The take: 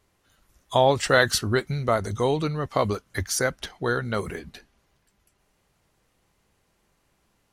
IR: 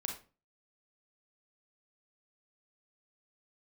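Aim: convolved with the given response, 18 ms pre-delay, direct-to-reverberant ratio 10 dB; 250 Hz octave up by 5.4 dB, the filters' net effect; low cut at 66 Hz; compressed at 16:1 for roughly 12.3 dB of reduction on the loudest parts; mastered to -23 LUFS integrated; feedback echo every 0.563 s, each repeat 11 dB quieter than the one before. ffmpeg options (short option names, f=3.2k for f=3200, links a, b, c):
-filter_complex "[0:a]highpass=66,equalizer=f=250:t=o:g=7,acompressor=threshold=-24dB:ratio=16,aecho=1:1:563|1126|1689:0.282|0.0789|0.0221,asplit=2[a][b];[1:a]atrim=start_sample=2205,adelay=18[c];[b][c]afir=irnorm=-1:irlink=0,volume=-10.5dB[d];[a][d]amix=inputs=2:normalize=0,volume=7dB"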